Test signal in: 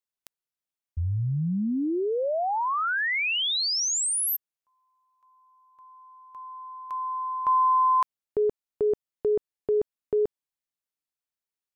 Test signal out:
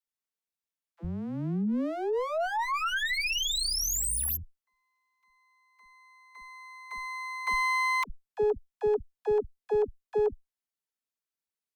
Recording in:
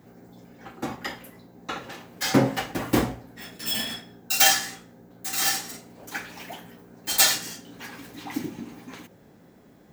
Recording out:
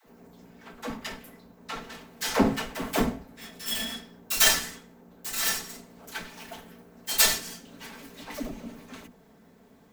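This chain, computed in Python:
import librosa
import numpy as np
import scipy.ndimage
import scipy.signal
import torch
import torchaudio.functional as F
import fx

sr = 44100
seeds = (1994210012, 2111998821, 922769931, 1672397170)

y = fx.lower_of_two(x, sr, delay_ms=4.5)
y = fx.dispersion(y, sr, late='lows', ms=71.0, hz=330.0)
y = fx.cheby_harmonics(y, sr, harmonics=(2, 7), levels_db=(-22, -32), full_scale_db=-5.0)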